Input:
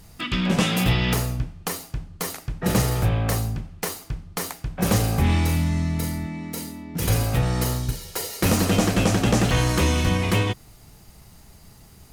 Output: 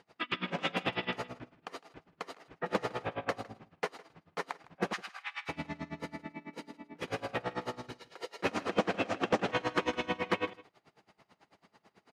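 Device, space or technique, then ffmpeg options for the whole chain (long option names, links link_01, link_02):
helicopter radio: -filter_complex "[0:a]highpass=370,lowpass=2600,aeval=exprs='val(0)*pow(10,-28*(0.5-0.5*cos(2*PI*9.1*n/s))/20)':channel_layout=same,asoftclip=type=hard:threshold=-18dB,asettb=1/sr,asplit=3[link_01][link_02][link_03];[link_01]atrim=end=4.934[link_04];[link_02]atrim=start=4.93:end=5.49,asetpts=PTS-STARTPTS,afade=type=in:duration=0.004:curve=qsin,afade=type=out:start_time=0.556:duration=0.004:curve=qsin,highpass=frequency=1200:width=0.5412,highpass=frequency=1200:width=1.3066[link_05];[link_03]atrim=start=5.486[link_06];[link_04][link_05]acrossfade=duration=0.004:curve1=hsin:curve2=qsin[link_07];[link_07][link_06]acrossfade=duration=0.004:curve1=qsin:curve2=hsin,aecho=1:1:158:0.0891"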